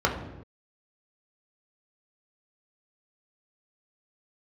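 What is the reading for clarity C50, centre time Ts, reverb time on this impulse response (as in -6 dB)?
7.0 dB, 28 ms, no single decay rate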